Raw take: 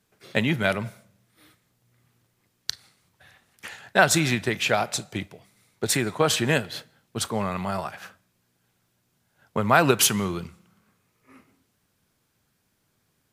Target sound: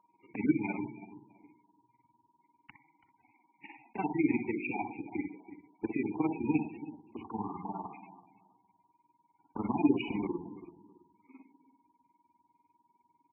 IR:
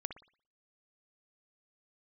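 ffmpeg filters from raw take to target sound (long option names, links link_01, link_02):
-filter_complex "[0:a]asplit=3[link_01][link_02][link_03];[link_01]bandpass=frequency=300:width_type=q:width=8,volume=0dB[link_04];[link_02]bandpass=frequency=870:width_type=q:width=8,volume=-6dB[link_05];[link_03]bandpass=frequency=2240:width_type=q:width=8,volume=-9dB[link_06];[link_04][link_05][link_06]amix=inputs=3:normalize=0,aemphasis=mode=reproduction:type=50fm,acrossover=split=310[link_07][link_08];[link_08]alimiter=level_in=7dB:limit=-24dB:level=0:latency=1:release=13,volume=-7dB[link_09];[link_07][link_09]amix=inputs=2:normalize=0,adynamicequalizer=threshold=0.00141:dfrequency=1300:dqfactor=1.7:tfrequency=1300:tqfactor=1.7:attack=5:release=100:ratio=0.375:range=2.5:mode=cutabove:tftype=bell,acontrast=80,aresample=16000,acrusher=bits=3:mode=log:mix=0:aa=0.000001,aresample=44100,aeval=exprs='val(0)+0.000708*sin(2*PI*950*n/s)':channel_layout=same,tremolo=f=20:d=0.889,asplit=2[link_10][link_11];[link_11]adelay=331,lowpass=frequency=2000:poles=1,volume=-14dB,asplit=2[link_12][link_13];[link_13]adelay=331,lowpass=frequency=2000:poles=1,volume=0.24,asplit=2[link_14][link_15];[link_15]adelay=331,lowpass=frequency=2000:poles=1,volume=0.24[link_16];[link_10][link_12][link_14][link_16]amix=inputs=4:normalize=0[link_17];[1:a]atrim=start_sample=2205[link_18];[link_17][link_18]afir=irnorm=-1:irlink=0,volume=3.5dB" -ar 24000 -c:a libmp3lame -b:a 8k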